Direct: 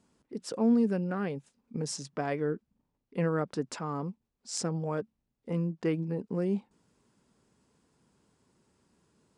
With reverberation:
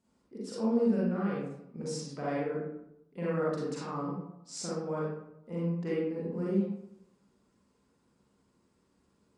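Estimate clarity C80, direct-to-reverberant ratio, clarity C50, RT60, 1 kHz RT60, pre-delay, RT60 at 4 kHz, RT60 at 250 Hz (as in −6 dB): 2.5 dB, −7.0 dB, −2.5 dB, 0.80 s, 0.80 s, 37 ms, 0.45 s, 0.80 s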